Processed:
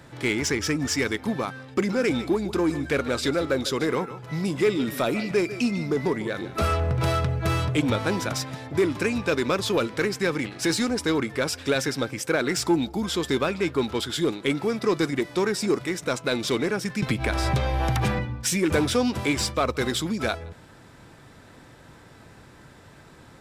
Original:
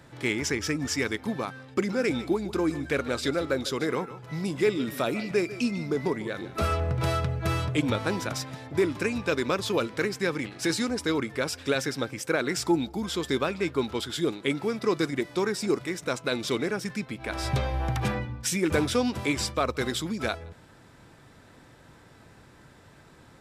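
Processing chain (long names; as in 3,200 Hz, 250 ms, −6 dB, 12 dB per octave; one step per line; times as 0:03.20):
in parallel at −4.5 dB: hard clipping −26 dBFS, distortion −9 dB
0:17.02–0:18.19: on the sum: multiband upward and downward compressor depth 100%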